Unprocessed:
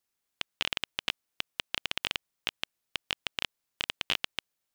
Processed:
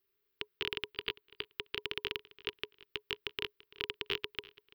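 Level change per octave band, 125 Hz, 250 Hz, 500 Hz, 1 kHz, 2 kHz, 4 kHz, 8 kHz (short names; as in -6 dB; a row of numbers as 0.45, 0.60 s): -3.0 dB, -1.0 dB, +4.0 dB, -7.0 dB, -5.0 dB, -5.5 dB, under -15 dB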